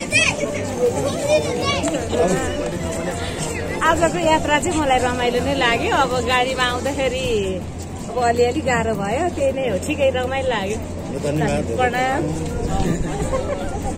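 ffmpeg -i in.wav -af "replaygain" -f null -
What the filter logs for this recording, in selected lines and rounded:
track_gain = -0.2 dB
track_peak = 0.468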